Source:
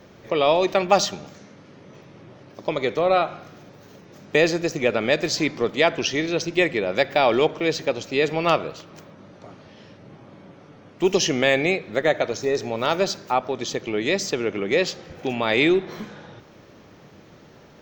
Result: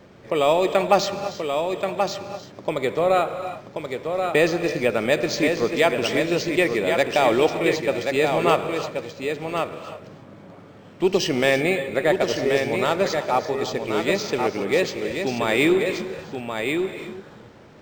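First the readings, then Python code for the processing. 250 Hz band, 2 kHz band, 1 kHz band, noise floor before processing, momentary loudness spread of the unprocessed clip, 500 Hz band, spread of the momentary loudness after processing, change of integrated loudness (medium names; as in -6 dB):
+1.5 dB, +0.5 dB, +1.0 dB, -49 dBFS, 9 LU, +1.5 dB, 11 LU, 0.0 dB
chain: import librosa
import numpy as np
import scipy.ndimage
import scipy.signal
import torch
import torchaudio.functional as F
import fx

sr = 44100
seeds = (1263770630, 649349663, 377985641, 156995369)

y = x + 10.0 ** (-5.5 / 20.0) * np.pad(x, (int(1081 * sr / 1000.0), 0))[:len(x)]
y = fx.rev_gated(y, sr, seeds[0], gate_ms=360, shape='rising', drr_db=10.5)
y = np.interp(np.arange(len(y)), np.arange(len(y))[::4], y[::4])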